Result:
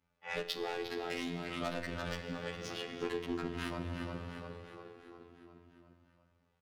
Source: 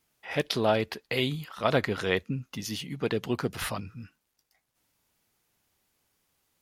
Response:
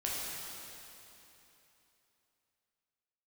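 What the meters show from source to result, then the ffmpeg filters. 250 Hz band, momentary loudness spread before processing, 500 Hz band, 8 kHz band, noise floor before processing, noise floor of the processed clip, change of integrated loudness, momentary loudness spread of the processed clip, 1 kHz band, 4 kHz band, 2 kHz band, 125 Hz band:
−7.5 dB, 9 LU, −10.0 dB, −10.5 dB, −79 dBFS, −76 dBFS, −10.0 dB, 16 LU, −8.5 dB, −8.5 dB, −8.0 dB, −10.5 dB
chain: -filter_complex "[0:a]highshelf=frequency=2600:gain=-6.5,aecho=1:1:351|702|1053|1404|1755|2106|2457:0.355|0.209|0.124|0.0729|0.043|0.0254|0.015,asoftclip=type=hard:threshold=-24dB,crystalizer=i=6:c=0,asplit=2[link_01][link_02];[link_02]adelay=42,volume=-12dB[link_03];[link_01][link_03]amix=inputs=2:normalize=0,adynamicsmooth=sensitivity=1.5:basefreq=1500,asplit=2[link_04][link_05];[link_05]highshelf=frequency=8700:gain=-7.5[link_06];[1:a]atrim=start_sample=2205[link_07];[link_06][link_07]afir=irnorm=-1:irlink=0,volume=-10dB[link_08];[link_04][link_08]amix=inputs=2:normalize=0,afftfilt=real='hypot(re,im)*cos(PI*b)':imag='0':win_size=2048:overlap=0.75,acompressor=threshold=-33dB:ratio=6,asplit=2[link_09][link_10];[link_10]adelay=7.8,afreqshift=0.47[link_11];[link_09][link_11]amix=inputs=2:normalize=1,volume=3dB"

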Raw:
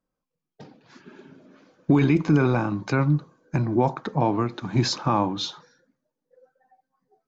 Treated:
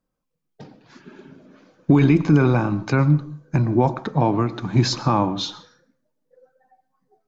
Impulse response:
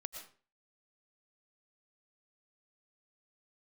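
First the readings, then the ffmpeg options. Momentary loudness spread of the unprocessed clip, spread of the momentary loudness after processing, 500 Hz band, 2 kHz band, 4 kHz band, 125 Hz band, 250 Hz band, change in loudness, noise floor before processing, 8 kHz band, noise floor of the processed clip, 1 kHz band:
8 LU, 9 LU, +2.5 dB, +2.0 dB, +2.0 dB, +5.0 dB, +3.5 dB, +3.5 dB, −85 dBFS, can't be measured, −78 dBFS, +2.0 dB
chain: -filter_complex "[0:a]asplit=2[link_01][link_02];[1:a]atrim=start_sample=2205,lowshelf=frequency=270:gain=12[link_03];[link_02][link_03]afir=irnorm=-1:irlink=0,volume=-7.5dB[link_04];[link_01][link_04]amix=inputs=2:normalize=0"

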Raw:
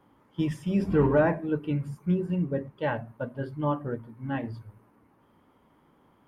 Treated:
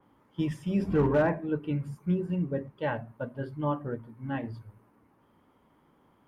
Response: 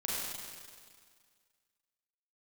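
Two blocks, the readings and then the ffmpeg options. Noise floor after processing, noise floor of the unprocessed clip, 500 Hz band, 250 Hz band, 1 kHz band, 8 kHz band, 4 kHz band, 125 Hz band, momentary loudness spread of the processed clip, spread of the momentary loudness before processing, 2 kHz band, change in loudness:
−66 dBFS, −63 dBFS, −2.0 dB, −2.0 dB, −2.0 dB, can't be measured, −2.0 dB, −2.0 dB, 13 LU, 13 LU, −2.0 dB, −2.0 dB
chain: -af "volume=15.5dB,asoftclip=hard,volume=-15.5dB,adynamicequalizer=threshold=0.00398:dfrequency=4000:dqfactor=0.7:tfrequency=4000:tqfactor=0.7:attack=5:release=100:ratio=0.375:range=2.5:mode=cutabove:tftype=highshelf,volume=-2dB"

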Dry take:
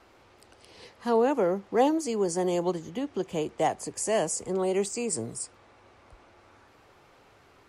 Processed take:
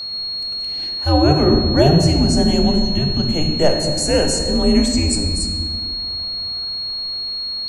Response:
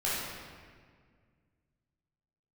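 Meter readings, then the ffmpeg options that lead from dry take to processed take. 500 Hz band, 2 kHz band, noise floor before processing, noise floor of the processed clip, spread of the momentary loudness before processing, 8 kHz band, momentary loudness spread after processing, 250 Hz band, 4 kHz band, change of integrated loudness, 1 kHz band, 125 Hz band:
+7.5 dB, +9.5 dB, −59 dBFS, −25 dBFS, 9 LU, +8.5 dB, 8 LU, +14.0 dB, +27.0 dB, +11.0 dB, +5.5 dB, +22.5 dB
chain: -filter_complex "[0:a]afreqshift=-150,aeval=exprs='val(0)+0.02*sin(2*PI*4300*n/s)':channel_layout=same,asplit=2[link_01][link_02];[1:a]atrim=start_sample=2205,lowshelf=frequency=220:gain=7.5[link_03];[link_02][link_03]afir=irnorm=-1:irlink=0,volume=-9.5dB[link_04];[link_01][link_04]amix=inputs=2:normalize=0,volume=6dB"

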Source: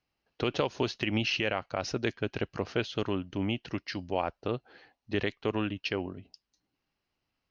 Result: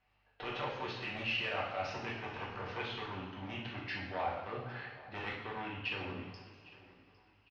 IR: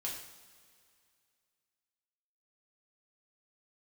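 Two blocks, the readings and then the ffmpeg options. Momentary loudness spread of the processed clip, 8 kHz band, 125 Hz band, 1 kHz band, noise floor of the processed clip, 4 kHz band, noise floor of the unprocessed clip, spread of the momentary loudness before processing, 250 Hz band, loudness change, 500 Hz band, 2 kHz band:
11 LU, can't be measured, −8.5 dB, −2.0 dB, −70 dBFS, −6.0 dB, −84 dBFS, 6 LU, −13.0 dB, −7.0 dB, −10.0 dB, −3.0 dB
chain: -filter_complex "[0:a]equalizer=frequency=120:width=0.83:gain=11,bandreject=frequency=59.76:width_type=h:width=4,bandreject=frequency=119.52:width_type=h:width=4,bandreject=frequency=179.28:width_type=h:width=4,bandreject=frequency=239.04:width_type=h:width=4,bandreject=frequency=298.8:width_type=h:width=4,aeval=exprs='0.299*(cos(1*acos(clip(val(0)/0.299,-1,1)))-cos(1*PI/2))+0.106*(cos(4*acos(clip(val(0)/0.299,-1,1)))-cos(4*PI/2))+0.0596*(cos(6*acos(clip(val(0)/0.299,-1,1)))-cos(6*PI/2))':channel_layout=same,alimiter=limit=-22dB:level=0:latency=1,areverse,acompressor=threshold=-38dB:ratio=12,areverse,aeval=exprs='val(0)+0.000158*(sin(2*PI*50*n/s)+sin(2*PI*2*50*n/s)/2+sin(2*PI*3*50*n/s)/3+sin(2*PI*4*50*n/s)/4+sin(2*PI*5*50*n/s)/5)':channel_layout=same,acrossover=split=580 3300:gain=0.178 1 0.0631[link_01][link_02][link_03];[link_01][link_02][link_03]amix=inputs=3:normalize=0,aecho=1:1:806|1612|2418:0.1|0.037|0.0137[link_04];[1:a]atrim=start_sample=2205,asetrate=35721,aresample=44100[link_05];[link_04][link_05]afir=irnorm=-1:irlink=0,volume=9.5dB"

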